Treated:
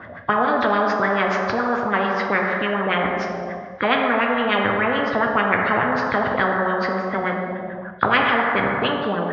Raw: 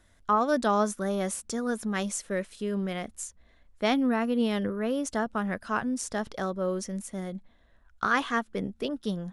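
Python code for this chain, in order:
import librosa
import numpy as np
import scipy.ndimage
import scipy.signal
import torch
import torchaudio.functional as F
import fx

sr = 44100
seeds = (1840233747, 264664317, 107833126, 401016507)

y = fx.freq_compress(x, sr, knee_hz=3200.0, ratio=1.5)
y = fx.cabinet(y, sr, low_hz=110.0, low_slope=24, high_hz=4600.0, hz=(320.0, 910.0, 1500.0), db=(-5, -4, -4))
y = fx.filter_lfo_lowpass(y, sr, shape='sine', hz=6.9, low_hz=580.0, high_hz=1700.0, q=4.3)
y = fx.rev_plate(y, sr, seeds[0], rt60_s=1.3, hf_ratio=0.9, predelay_ms=0, drr_db=4.0)
y = fx.spectral_comp(y, sr, ratio=4.0)
y = y * 10.0 ** (4.0 / 20.0)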